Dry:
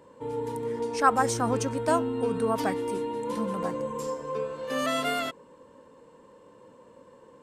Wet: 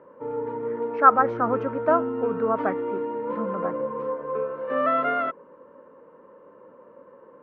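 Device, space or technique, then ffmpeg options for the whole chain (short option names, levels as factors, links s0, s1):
bass cabinet: -af "highpass=84,equalizer=f=88:t=q:w=4:g=-8,equalizer=f=130:t=q:w=4:g=-5,equalizer=f=380:t=q:w=4:g=4,equalizer=f=590:t=q:w=4:g=7,equalizer=f=1300:t=q:w=4:g=10,lowpass=f=2100:w=0.5412,lowpass=f=2100:w=1.3066"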